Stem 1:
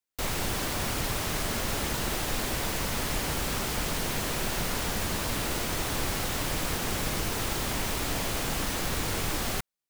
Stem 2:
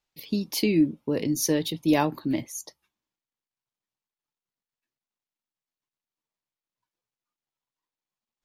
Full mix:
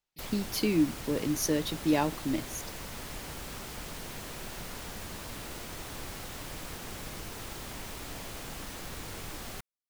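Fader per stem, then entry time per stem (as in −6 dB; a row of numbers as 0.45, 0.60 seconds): −11.0, −4.5 decibels; 0.00, 0.00 seconds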